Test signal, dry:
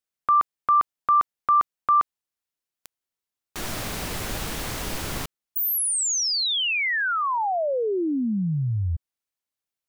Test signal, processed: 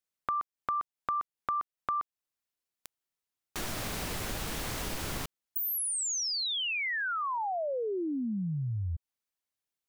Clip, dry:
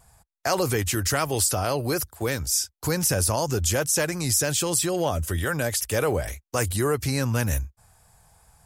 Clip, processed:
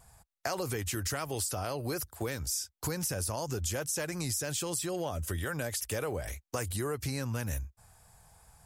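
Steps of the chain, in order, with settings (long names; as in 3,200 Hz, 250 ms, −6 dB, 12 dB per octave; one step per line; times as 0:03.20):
downward compressor 4 to 1, threshold −30 dBFS
level −2 dB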